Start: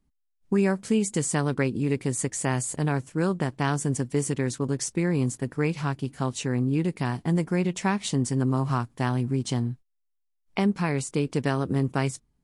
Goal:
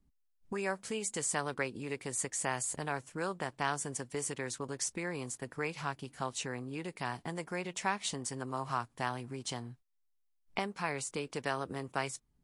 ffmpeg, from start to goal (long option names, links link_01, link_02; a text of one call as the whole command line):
ffmpeg -i in.wav -filter_complex "[0:a]lowshelf=frequency=470:gain=4.5,acrossover=split=530|3400[link_01][link_02][link_03];[link_01]acompressor=threshold=-38dB:ratio=12[link_04];[link_04][link_02][link_03]amix=inputs=3:normalize=0,volume=-4.5dB" out.wav